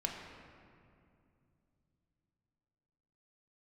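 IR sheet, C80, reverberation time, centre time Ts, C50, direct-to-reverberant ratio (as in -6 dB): 4.0 dB, 2.5 s, 74 ms, 3.0 dB, -0.5 dB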